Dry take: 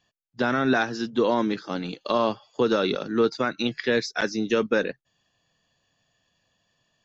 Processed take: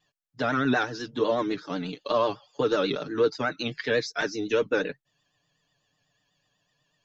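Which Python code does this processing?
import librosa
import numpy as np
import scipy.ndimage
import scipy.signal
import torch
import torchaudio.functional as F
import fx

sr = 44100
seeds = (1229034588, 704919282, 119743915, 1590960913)

y = x + 0.83 * np.pad(x, (int(6.8 * sr / 1000.0), 0))[:len(x)]
y = fx.vibrato(y, sr, rate_hz=8.1, depth_cents=81.0)
y = y * librosa.db_to_amplitude(-4.5)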